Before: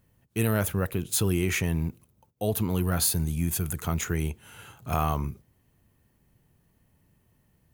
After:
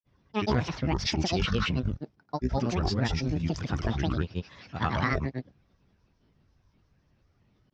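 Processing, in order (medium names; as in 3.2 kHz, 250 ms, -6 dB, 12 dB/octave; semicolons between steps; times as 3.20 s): granulator, grains 27 per s, spray 153 ms, pitch spread up and down by 12 st; elliptic low-pass 5.6 kHz, stop band 50 dB; trim +3 dB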